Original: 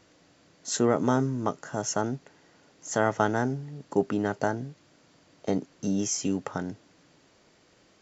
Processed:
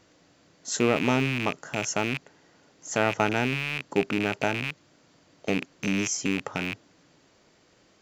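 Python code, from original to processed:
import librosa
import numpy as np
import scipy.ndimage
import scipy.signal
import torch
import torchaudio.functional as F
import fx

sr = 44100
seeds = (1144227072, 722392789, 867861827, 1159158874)

y = fx.rattle_buzz(x, sr, strikes_db=-40.0, level_db=-18.0)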